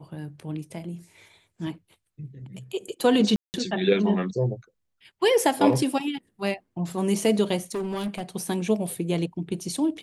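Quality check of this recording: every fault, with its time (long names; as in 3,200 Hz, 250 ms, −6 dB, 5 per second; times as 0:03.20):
0:03.36–0:03.54: drop-out 179 ms
0:07.71–0:08.22: clipping −25.5 dBFS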